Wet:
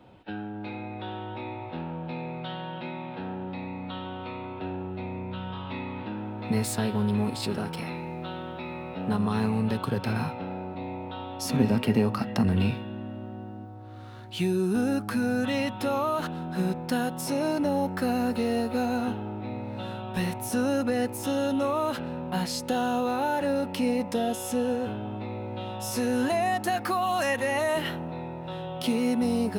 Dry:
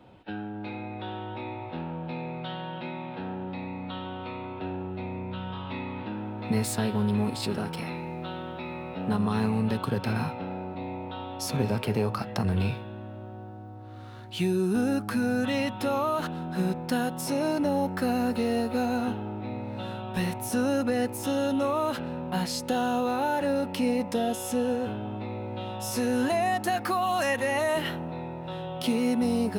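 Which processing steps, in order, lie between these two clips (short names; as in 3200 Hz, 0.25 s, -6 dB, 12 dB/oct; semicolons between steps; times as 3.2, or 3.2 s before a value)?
11.45–13.65 small resonant body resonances 240/1900/2800 Hz, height 10 dB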